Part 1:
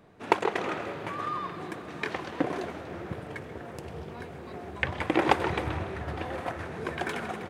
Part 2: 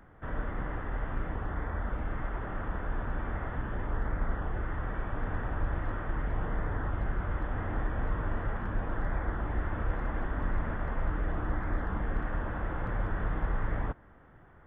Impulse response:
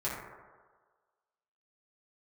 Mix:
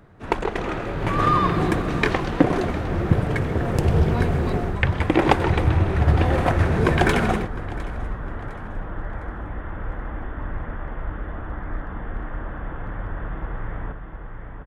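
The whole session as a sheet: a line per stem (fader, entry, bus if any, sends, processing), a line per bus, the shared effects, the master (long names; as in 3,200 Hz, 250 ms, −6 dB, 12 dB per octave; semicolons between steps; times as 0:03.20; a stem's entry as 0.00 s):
−1.5 dB, 0.00 s, no send, echo send −18.5 dB, parametric band 76 Hz +12 dB 2.9 octaves; automatic gain control gain up to 16 dB
+0.5 dB, 0.00 s, no send, echo send −6.5 dB, no processing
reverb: not used
echo: repeating echo 707 ms, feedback 39%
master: no processing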